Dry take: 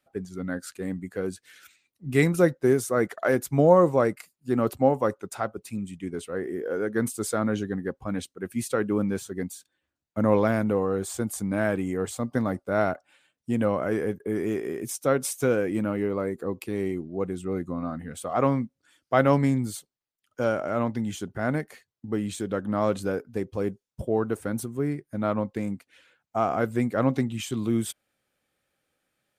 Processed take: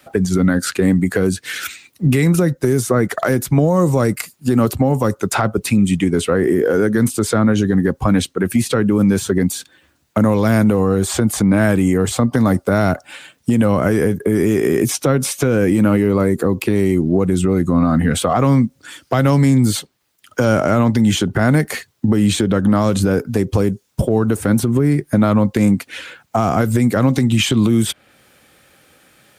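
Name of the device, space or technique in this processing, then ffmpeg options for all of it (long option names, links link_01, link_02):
mastering chain: -filter_complex "[0:a]highpass=40,equalizer=frequency=590:width_type=o:width=0.77:gain=-2,acrossover=split=210|4300[link_01][link_02][link_03];[link_01]acompressor=threshold=-35dB:ratio=4[link_04];[link_02]acompressor=threshold=-37dB:ratio=4[link_05];[link_03]acompressor=threshold=-52dB:ratio=4[link_06];[link_04][link_05][link_06]amix=inputs=3:normalize=0,acompressor=threshold=-36dB:ratio=3,asoftclip=type=hard:threshold=-27dB,alimiter=level_in=31dB:limit=-1dB:release=50:level=0:latency=1,volume=-5dB"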